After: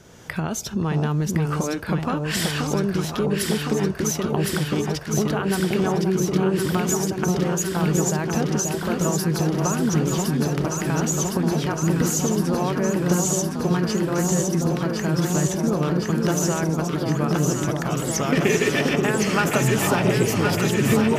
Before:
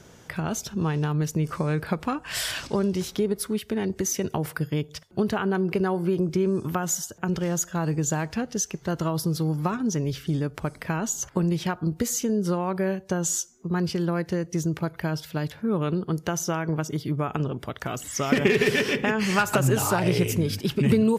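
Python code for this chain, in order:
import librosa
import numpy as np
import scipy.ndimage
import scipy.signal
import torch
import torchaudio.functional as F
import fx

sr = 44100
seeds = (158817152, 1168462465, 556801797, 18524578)

y = fx.recorder_agc(x, sr, target_db=-16.5, rise_db_per_s=23.0, max_gain_db=30)
y = fx.echo_alternate(y, sr, ms=531, hz=1000.0, feedback_pct=89, wet_db=-3.0)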